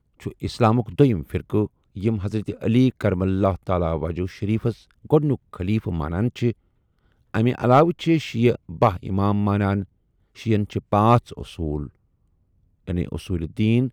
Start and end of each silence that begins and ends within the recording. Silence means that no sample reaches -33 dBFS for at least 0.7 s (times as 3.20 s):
6.52–7.34 s
11.87–12.88 s